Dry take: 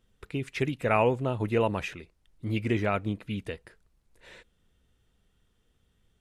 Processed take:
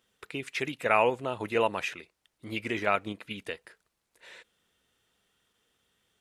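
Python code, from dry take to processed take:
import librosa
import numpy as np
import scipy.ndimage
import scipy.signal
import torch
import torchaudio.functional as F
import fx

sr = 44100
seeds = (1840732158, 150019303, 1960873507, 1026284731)

p1 = fx.highpass(x, sr, hz=760.0, slope=6)
p2 = fx.level_steps(p1, sr, step_db=10)
p3 = p1 + F.gain(torch.from_numpy(p2), 1.0).numpy()
y = F.gain(torch.from_numpy(p3), -1.0).numpy()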